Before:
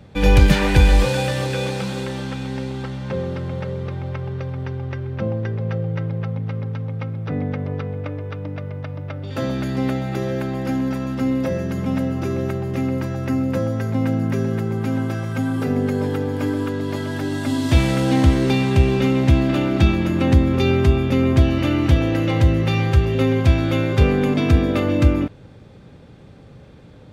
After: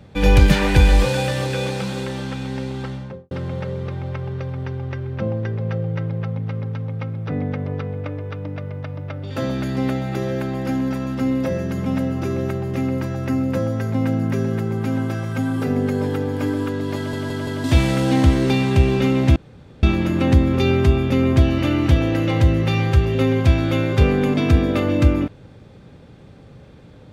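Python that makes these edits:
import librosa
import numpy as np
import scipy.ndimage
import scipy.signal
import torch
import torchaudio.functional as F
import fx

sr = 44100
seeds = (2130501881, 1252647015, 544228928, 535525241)

y = fx.studio_fade_out(x, sr, start_s=2.88, length_s=0.43)
y = fx.edit(y, sr, fx.stutter_over(start_s=16.96, slice_s=0.17, count=4),
    fx.room_tone_fill(start_s=19.36, length_s=0.47), tone=tone)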